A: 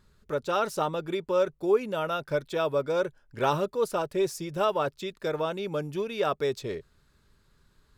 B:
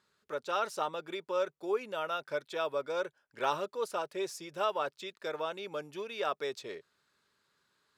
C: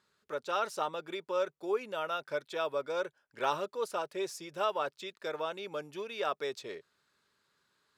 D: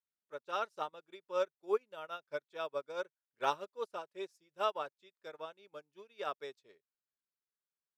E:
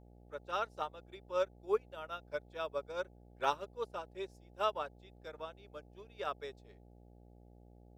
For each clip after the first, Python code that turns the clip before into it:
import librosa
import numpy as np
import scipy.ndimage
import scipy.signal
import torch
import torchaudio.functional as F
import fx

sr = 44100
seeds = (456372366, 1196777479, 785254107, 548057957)

y1 = fx.weighting(x, sr, curve='A')
y1 = F.gain(torch.from_numpy(y1), -4.5).numpy()
y2 = y1
y3 = fx.upward_expand(y2, sr, threshold_db=-48.0, expansion=2.5)
y3 = F.gain(torch.from_numpy(y3), 1.0).numpy()
y4 = fx.dmg_buzz(y3, sr, base_hz=60.0, harmonics=14, level_db=-59.0, tilt_db=-5, odd_only=False)